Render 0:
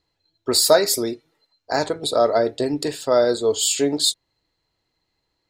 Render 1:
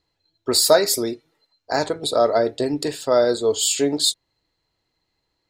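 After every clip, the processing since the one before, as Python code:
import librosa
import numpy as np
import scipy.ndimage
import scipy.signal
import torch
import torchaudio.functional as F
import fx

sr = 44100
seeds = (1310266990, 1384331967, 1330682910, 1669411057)

y = x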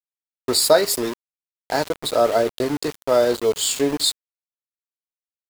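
y = fx.peak_eq(x, sr, hz=6000.0, db=-5.5, octaves=0.34)
y = np.where(np.abs(y) >= 10.0 ** (-26.0 / 20.0), y, 0.0)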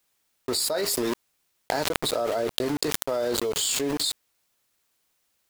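y = fx.env_flatten(x, sr, amount_pct=100)
y = F.gain(torch.from_numpy(y), -16.0).numpy()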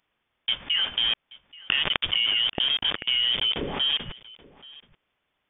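y = x + 10.0 ** (-22.0 / 20.0) * np.pad(x, (int(830 * sr / 1000.0), 0))[:len(x)]
y = fx.freq_invert(y, sr, carrier_hz=3500)
y = F.gain(torch.from_numpy(y), 2.5).numpy()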